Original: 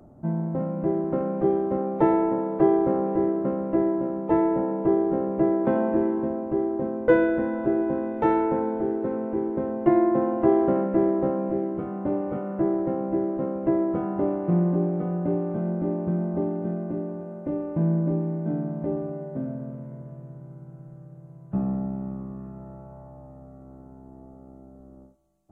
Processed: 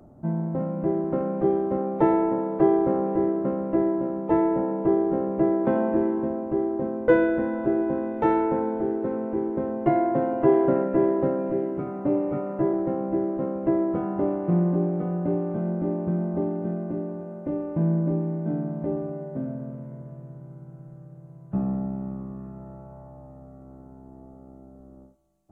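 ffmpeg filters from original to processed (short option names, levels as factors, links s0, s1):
-filter_complex "[0:a]asettb=1/sr,asplit=3[s0][s1][s2];[s0]atrim=end=9.864[s3];[s1]atrim=start=9.86:end=12.73,asetpts=PTS-STARTPTS,afade=t=in:d=0.004:c=qsin,afade=t=out:st=2.866:d=0.004:c=qsin,aecho=1:1:7.1:0.65,atrim=end_sample=126567[s4];[s2]atrim=start=12.726[s5];[s3][s4]acrossfade=d=0.004:c1=hsin:c2=qsin[s6];[s6][s5]acrossfade=d=0.004:c1=qsin:c2=hsin"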